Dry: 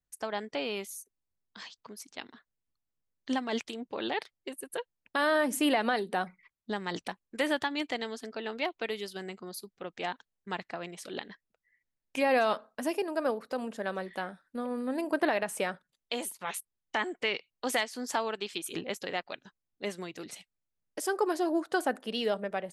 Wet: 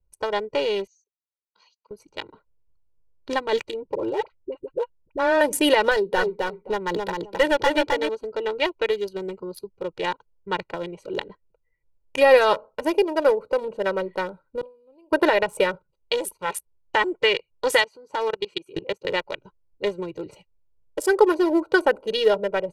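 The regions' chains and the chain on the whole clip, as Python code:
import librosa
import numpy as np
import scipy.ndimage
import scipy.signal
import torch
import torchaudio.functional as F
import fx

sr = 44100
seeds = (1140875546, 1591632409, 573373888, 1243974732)

y = fx.chain(x, sr, fx.steep_lowpass(hz=6800.0, slope=72),
    fx.differentiator(), at=(0.87, 1.91))
y = fx.chain(y, sr, fx.spacing_loss(db_at_10k=27),
    fx.dispersion(late='highs', ms=50.0, hz=630.0), at=(3.95, 5.41))
y = fx.chain(y, sr, fx.bass_treble(bass_db=-3, treble_db=-5),
    fx.clip_hard(threshold_db=-23.0),
    fx.echo_feedback(ms=263, feedback_pct=19, wet_db=-3), at=(5.91, 8.09))
y = fx.chain(y, sr, fx.high_shelf_res(hz=2300.0, db=7.5, q=3.0),
    fx.gate_flip(shuts_db=-36.0, range_db=-29),
    fx.sustainer(db_per_s=140.0), at=(14.61, 15.12))
y = fx.chain(y, sr, fx.highpass(hz=110.0, slope=12),
    fx.high_shelf(hz=9100.0, db=-3.5),
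    fx.level_steps(step_db=17), at=(17.82, 19.05))
y = fx.wiener(y, sr, points=25)
y = fx.low_shelf(y, sr, hz=63.0, db=10.0)
y = y + 0.86 * np.pad(y, (int(2.1 * sr / 1000.0), 0))[:len(y)]
y = y * librosa.db_to_amplitude(8.5)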